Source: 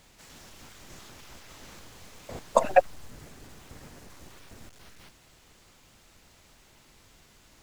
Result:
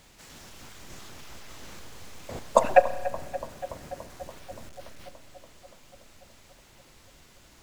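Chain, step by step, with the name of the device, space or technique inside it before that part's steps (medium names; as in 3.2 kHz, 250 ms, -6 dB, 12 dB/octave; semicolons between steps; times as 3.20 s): dub delay into a spring reverb (filtered feedback delay 287 ms, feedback 79%, low-pass 2.2 kHz, level -15 dB; spring tank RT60 1.5 s, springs 30 ms, chirp 50 ms, DRR 14 dB); trim +2 dB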